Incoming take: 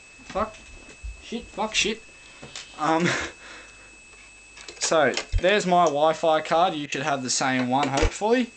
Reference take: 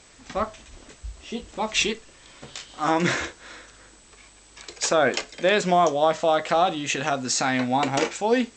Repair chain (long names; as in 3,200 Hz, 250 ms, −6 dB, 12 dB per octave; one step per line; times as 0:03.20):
notch filter 2,600 Hz, Q 30
0:05.32–0:05.44: high-pass filter 140 Hz 24 dB per octave
0:08.01–0:08.13: high-pass filter 140 Hz 24 dB per octave
repair the gap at 0:06.86, 59 ms